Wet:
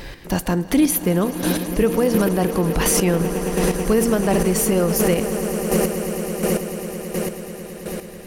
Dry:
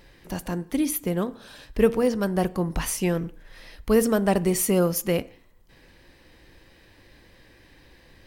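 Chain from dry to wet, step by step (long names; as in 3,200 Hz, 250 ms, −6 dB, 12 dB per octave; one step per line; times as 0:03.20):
speech leveller within 4 dB
echo that builds up and dies away 109 ms, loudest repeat 8, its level −16.5 dB
square-wave tremolo 1.4 Hz, depth 60%, duty 20%
boost into a limiter +21 dB
level −7 dB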